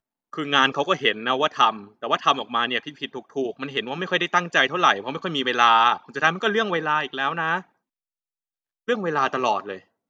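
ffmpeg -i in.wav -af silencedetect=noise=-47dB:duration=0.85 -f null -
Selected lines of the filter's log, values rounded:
silence_start: 7.64
silence_end: 8.88 | silence_duration: 1.24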